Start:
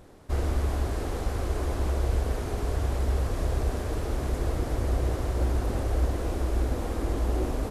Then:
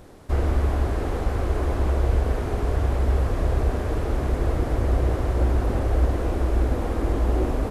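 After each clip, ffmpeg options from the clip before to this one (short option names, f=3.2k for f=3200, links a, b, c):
-filter_complex "[0:a]acrossover=split=3000[a][b];[b]acompressor=threshold=-55dB:ratio=4:attack=1:release=60[c];[a][c]amix=inputs=2:normalize=0,volume=5dB"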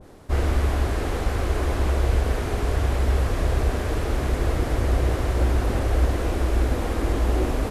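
-af "adynamicequalizer=threshold=0.00398:dfrequency=1500:dqfactor=0.7:tfrequency=1500:tqfactor=0.7:attack=5:release=100:ratio=0.375:range=3.5:mode=boostabove:tftype=highshelf"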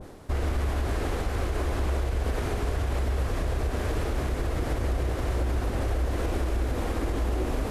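-af "alimiter=limit=-19dB:level=0:latency=1:release=104,areverse,acompressor=mode=upward:threshold=-32dB:ratio=2.5,areverse"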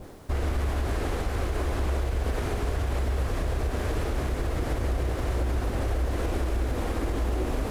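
-af "acrusher=bits=9:mix=0:aa=0.000001"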